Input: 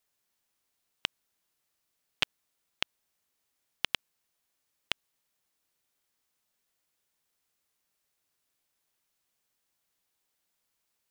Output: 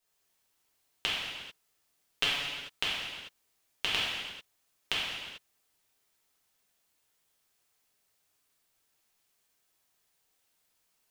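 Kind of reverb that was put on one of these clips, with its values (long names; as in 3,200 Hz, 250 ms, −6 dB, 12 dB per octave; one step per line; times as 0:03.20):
reverb whose tail is shaped and stops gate 470 ms falling, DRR −8 dB
level −3.5 dB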